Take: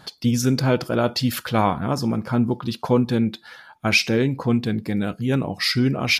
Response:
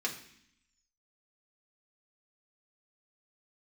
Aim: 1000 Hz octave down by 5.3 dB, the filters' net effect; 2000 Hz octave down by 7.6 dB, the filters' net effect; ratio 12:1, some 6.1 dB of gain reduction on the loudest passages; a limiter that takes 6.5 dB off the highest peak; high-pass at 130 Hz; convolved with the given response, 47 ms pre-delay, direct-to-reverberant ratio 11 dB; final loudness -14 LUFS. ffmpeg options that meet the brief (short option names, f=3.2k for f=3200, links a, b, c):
-filter_complex "[0:a]highpass=130,equalizer=f=1k:t=o:g=-5,equalizer=f=2k:t=o:g=-9,acompressor=threshold=-21dB:ratio=12,alimiter=limit=-18dB:level=0:latency=1,asplit=2[a][b];[1:a]atrim=start_sample=2205,adelay=47[c];[b][c]afir=irnorm=-1:irlink=0,volume=-15.5dB[d];[a][d]amix=inputs=2:normalize=0,volume=15dB"